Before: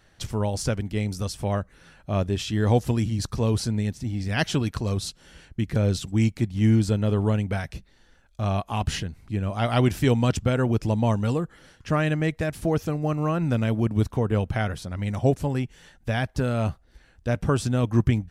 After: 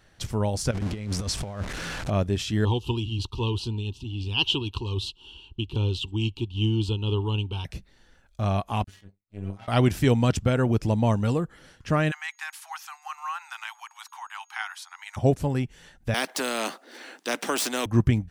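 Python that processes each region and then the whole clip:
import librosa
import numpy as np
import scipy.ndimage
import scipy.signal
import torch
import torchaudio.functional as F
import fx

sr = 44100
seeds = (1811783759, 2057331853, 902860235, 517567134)

y = fx.chain(x, sr, fx.zero_step(step_db=-32.0),
    fx.lowpass(hz=8000.0, slope=12),
    fx.over_compress(threshold_db=-28.0, ratio=-0.5), at=(0.71, 2.1))
y = fx.chain(y, sr, fx.curve_eq(hz=(100.0, 180.0, 380.0, 640.0, 920.0, 2000.0, 2800.0, 5600.0, 10000.0), db=(0, -12, 3, -22, 6, -30, 15, -8, -12)),
    fx.tremolo(hz=3.8, depth=0.31), at=(2.65, 7.65))
y = fx.chain(y, sr, fx.stiff_resonator(f0_hz=96.0, decay_s=0.36, stiffness=0.008),
    fx.power_curve(exponent=2.0), at=(8.84, 9.68))
y = fx.steep_highpass(y, sr, hz=810.0, slope=96, at=(12.1, 15.16), fade=0.02)
y = fx.dmg_tone(y, sr, hz=6600.0, level_db=-62.0, at=(12.1, 15.16), fade=0.02)
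y = fx.chain(y, sr, fx.median_filter(points=3),
    fx.steep_highpass(hz=250.0, slope=48),
    fx.spectral_comp(ratio=2.0), at=(16.14, 17.86))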